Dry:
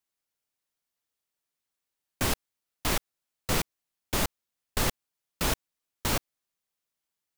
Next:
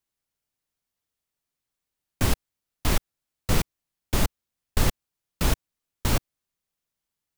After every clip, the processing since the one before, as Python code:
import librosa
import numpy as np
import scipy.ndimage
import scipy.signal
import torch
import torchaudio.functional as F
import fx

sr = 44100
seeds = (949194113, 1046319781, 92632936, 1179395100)

y = fx.low_shelf(x, sr, hz=210.0, db=10.0)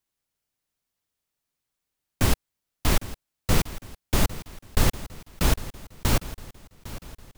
y = fx.echo_feedback(x, sr, ms=805, feedback_pct=49, wet_db=-16)
y = y * 10.0 ** (1.5 / 20.0)